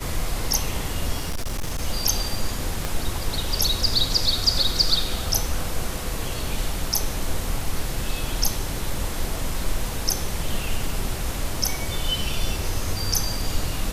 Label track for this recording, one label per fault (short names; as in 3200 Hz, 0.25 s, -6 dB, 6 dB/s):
1.200000	1.820000	clipped -22.5 dBFS
2.850000	2.850000	pop